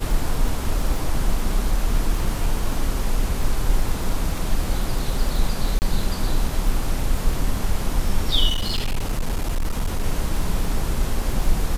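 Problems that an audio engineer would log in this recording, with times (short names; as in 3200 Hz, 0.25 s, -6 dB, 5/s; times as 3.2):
crackle 36/s -26 dBFS
5.79–5.82 gap 29 ms
8.49–10.05 clipped -18 dBFS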